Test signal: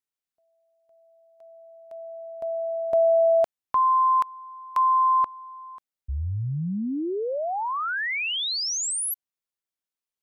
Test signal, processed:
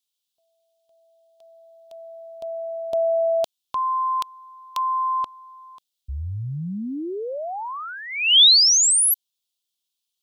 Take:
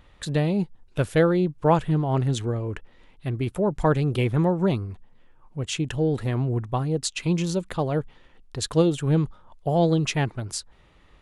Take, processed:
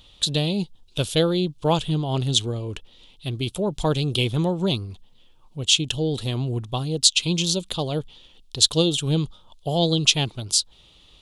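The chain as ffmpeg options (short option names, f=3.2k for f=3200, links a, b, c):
-af "highshelf=f=2.5k:t=q:w=3:g=10.5,volume=-1dB"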